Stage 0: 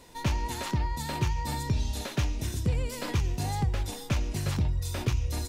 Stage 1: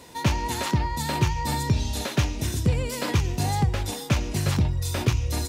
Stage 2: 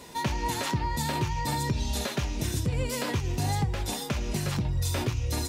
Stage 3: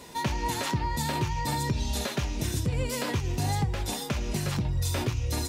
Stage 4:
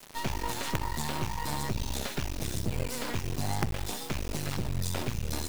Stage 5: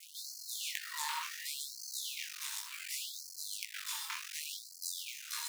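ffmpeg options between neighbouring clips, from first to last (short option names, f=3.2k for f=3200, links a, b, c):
-af "highpass=68,volume=6.5dB"
-af "alimiter=limit=-19.5dB:level=0:latency=1:release=206,flanger=delay=4.9:depth=3:regen=-55:speed=0.48:shape=sinusoidal,volume=5dB"
-af anull
-af "acrusher=bits=4:dc=4:mix=0:aa=0.000001"
-af "flanger=delay=18:depth=6.5:speed=1.1,afftfilt=real='re*gte(b*sr/1024,840*pow(4200/840,0.5+0.5*sin(2*PI*0.68*pts/sr)))':imag='im*gte(b*sr/1024,840*pow(4200/840,0.5+0.5*sin(2*PI*0.68*pts/sr)))':win_size=1024:overlap=0.75,volume=2.5dB"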